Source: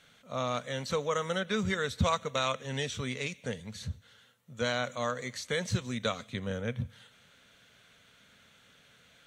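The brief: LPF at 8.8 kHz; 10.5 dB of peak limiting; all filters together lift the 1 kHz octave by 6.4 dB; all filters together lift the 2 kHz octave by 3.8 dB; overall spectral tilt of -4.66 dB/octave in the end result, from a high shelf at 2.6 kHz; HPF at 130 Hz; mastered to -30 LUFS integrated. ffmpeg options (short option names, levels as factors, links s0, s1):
-af "highpass=130,lowpass=8800,equalizer=f=1000:t=o:g=7.5,equalizer=f=2000:t=o:g=3.5,highshelf=f=2600:g=-3.5,volume=1.68,alimiter=limit=0.141:level=0:latency=1"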